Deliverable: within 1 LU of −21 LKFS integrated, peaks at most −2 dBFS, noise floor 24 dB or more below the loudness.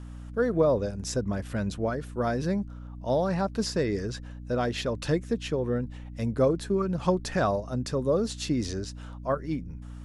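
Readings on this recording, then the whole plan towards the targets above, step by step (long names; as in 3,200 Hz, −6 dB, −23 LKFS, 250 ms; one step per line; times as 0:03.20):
mains hum 60 Hz; hum harmonics up to 300 Hz; level of the hum −39 dBFS; integrated loudness −29.0 LKFS; sample peak −11.0 dBFS; target loudness −21.0 LKFS
→ hum removal 60 Hz, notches 5
level +8 dB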